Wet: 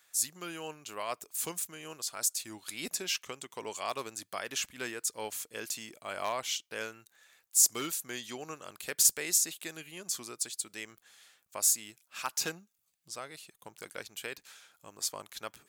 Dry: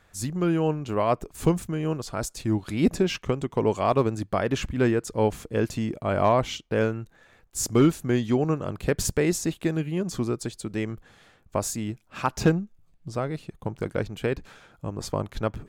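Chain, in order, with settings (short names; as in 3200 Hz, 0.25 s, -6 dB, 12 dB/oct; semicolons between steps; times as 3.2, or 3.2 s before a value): differentiator; gain +6 dB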